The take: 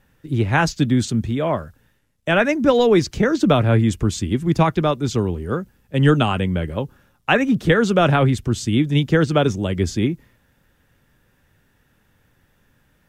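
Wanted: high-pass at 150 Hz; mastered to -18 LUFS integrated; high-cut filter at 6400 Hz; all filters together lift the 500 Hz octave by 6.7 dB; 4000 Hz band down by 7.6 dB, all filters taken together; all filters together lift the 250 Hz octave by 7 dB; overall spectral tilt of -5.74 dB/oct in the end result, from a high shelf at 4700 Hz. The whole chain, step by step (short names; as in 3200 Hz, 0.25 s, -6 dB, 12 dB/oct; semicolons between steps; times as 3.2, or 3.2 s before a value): HPF 150 Hz; LPF 6400 Hz; bell 250 Hz +8 dB; bell 500 Hz +6 dB; bell 4000 Hz -6.5 dB; high shelf 4700 Hz -8 dB; gain -4 dB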